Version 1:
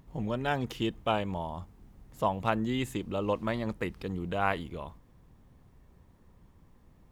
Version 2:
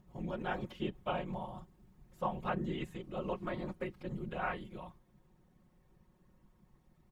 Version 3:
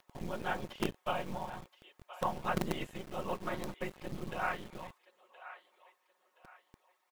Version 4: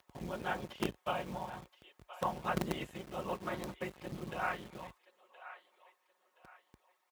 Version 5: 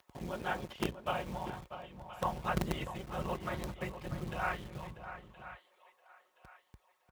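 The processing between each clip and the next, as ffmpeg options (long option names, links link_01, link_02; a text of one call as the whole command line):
ffmpeg -i in.wav -filter_complex "[0:a]acrossover=split=3300[link_01][link_02];[link_02]acompressor=threshold=-57dB:ratio=4:attack=1:release=60[link_03];[link_01][link_03]amix=inputs=2:normalize=0,afftfilt=real='hypot(re,im)*cos(2*PI*random(0))':imag='hypot(re,im)*sin(2*PI*random(1))':win_size=512:overlap=0.75,aecho=1:1:5.5:0.65,volume=-2.5dB" out.wav
ffmpeg -i in.wav -filter_complex "[0:a]acrossover=split=630[link_01][link_02];[link_01]acrusher=bits=6:dc=4:mix=0:aa=0.000001[link_03];[link_02]aecho=1:1:1023|2046|3069:0.211|0.0697|0.023[link_04];[link_03][link_04]amix=inputs=2:normalize=0,volume=3dB" out.wav
ffmpeg -i in.wav -af "highpass=frequency=43:width=0.5412,highpass=frequency=43:width=1.3066,volume=-1dB" out.wav
ffmpeg -i in.wav -filter_complex "[0:a]asubboost=boost=4:cutoff=130,asplit=2[link_01][link_02];[link_02]adelay=641.4,volume=-10dB,highshelf=frequency=4000:gain=-14.4[link_03];[link_01][link_03]amix=inputs=2:normalize=0,volume=1dB" out.wav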